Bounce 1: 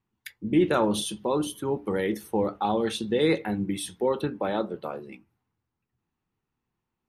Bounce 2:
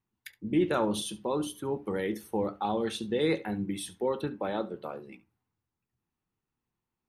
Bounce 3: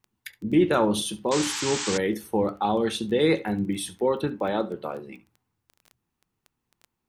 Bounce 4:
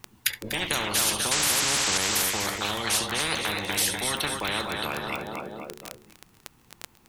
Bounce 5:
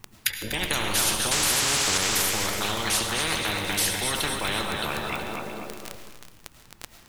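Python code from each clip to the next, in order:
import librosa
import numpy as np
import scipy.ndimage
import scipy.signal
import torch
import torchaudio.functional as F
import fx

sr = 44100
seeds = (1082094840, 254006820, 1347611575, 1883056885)

y1 = x + 10.0 ** (-19.5 / 20.0) * np.pad(x, (int(70 * sr / 1000.0), 0))[:len(x)]
y1 = y1 * 10.0 ** (-4.5 / 20.0)
y2 = fx.spec_paint(y1, sr, seeds[0], shape='noise', start_s=1.31, length_s=0.67, low_hz=780.0, high_hz=8300.0, level_db=-37.0)
y2 = fx.dmg_crackle(y2, sr, seeds[1], per_s=11.0, level_db=-42.0)
y2 = y2 * 10.0 ** (6.0 / 20.0)
y3 = fx.echo_feedback(y2, sr, ms=245, feedback_pct=44, wet_db=-14)
y3 = fx.spectral_comp(y3, sr, ratio=10.0)
y3 = y3 * 10.0 ** (5.5 / 20.0)
y4 = fx.low_shelf(y3, sr, hz=66.0, db=10.5)
y4 = fx.rev_freeverb(y4, sr, rt60_s=1.1, hf_ratio=0.8, predelay_ms=65, drr_db=7.5)
y4 = fx.echo_crushed(y4, sr, ms=372, feedback_pct=55, bits=6, wet_db=-11.0)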